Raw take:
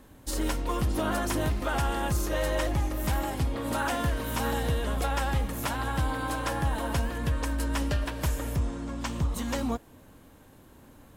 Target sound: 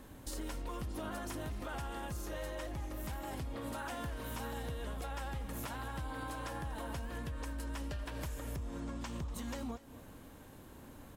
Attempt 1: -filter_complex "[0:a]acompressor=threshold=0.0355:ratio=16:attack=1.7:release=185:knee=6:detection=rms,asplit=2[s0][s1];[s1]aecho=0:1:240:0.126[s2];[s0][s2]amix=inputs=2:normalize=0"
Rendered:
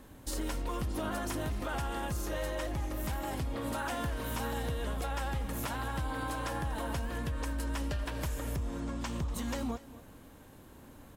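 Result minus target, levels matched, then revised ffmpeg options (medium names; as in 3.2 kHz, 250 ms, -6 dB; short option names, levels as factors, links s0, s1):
compression: peak gain reduction -6 dB
-filter_complex "[0:a]acompressor=threshold=0.0168:ratio=16:attack=1.7:release=185:knee=6:detection=rms,asplit=2[s0][s1];[s1]aecho=0:1:240:0.126[s2];[s0][s2]amix=inputs=2:normalize=0"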